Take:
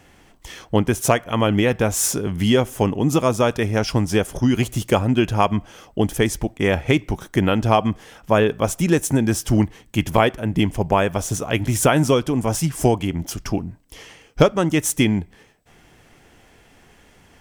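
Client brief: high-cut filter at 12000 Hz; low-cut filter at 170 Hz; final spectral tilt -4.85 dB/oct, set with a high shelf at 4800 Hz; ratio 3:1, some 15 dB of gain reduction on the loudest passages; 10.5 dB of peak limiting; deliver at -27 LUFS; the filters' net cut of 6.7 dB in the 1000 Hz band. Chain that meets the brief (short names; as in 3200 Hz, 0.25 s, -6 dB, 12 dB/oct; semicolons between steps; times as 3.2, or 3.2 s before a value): HPF 170 Hz; LPF 12000 Hz; bell 1000 Hz -9 dB; high shelf 4800 Hz -9 dB; compressor 3:1, threshold -34 dBFS; gain +11.5 dB; limiter -15.5 dBFS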